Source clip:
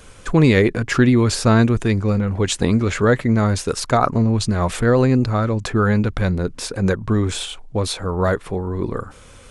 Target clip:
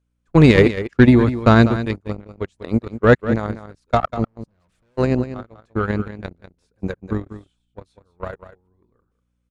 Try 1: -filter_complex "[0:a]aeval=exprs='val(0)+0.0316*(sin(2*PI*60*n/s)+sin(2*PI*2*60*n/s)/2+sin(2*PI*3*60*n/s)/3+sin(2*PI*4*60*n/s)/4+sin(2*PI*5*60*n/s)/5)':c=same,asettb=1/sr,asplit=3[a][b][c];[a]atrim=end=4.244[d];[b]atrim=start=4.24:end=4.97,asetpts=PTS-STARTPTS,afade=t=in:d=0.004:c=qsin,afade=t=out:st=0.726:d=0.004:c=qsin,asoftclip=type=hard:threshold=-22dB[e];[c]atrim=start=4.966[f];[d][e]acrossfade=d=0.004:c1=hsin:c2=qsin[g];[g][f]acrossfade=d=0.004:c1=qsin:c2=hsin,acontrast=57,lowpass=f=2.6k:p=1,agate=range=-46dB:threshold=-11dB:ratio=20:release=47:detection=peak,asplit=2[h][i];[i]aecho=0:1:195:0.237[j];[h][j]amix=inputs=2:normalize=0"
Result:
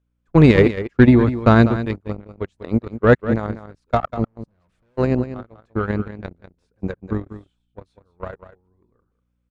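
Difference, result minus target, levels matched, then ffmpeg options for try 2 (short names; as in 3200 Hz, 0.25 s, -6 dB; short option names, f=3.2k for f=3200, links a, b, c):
8000 Hz band -7.0 dB
-filter_complex "[0:a]aeval=exprs='val(0)+0.0316*(sin(2*PI*60*n/s)+sin(2*PI*2*60*n/s)/2+sin(2*PI*3*60*n/s)/3+sin(2*PI*4*60*n/s)/4+sin(2*PI*5*60*n/s)/5)':c=same,asettb=1/sr,asplit=3[a][b][c];[a]atrim=end=4.244[d];[b]atrim=start=4.24:end=4.97,asetpts=PTS-STARTPTS,afade=t=in:d=0.004:c=qsin,afade=t=out:st=0.726:d=0.004:c=qsin,asoftclip=type=hard:threshold=-22dB[e];[c]atrim=start=4.966[f];[d][e]acrossfade=d=0.004:c1=hsin:c2=qsin[g];[g][f]acrossfade=d=0.004:c1=qsin:c2=hsin,acontrast=57,lowpass=f=9.2k:p=1,agate=range=-46dB:threshold=-11dB:ratio=20:release=47:detection=peak,asplit=2[h][i];[i]aecho=0:1:195:0.237[j];[h][j]amix=inputs=2:normalize=0"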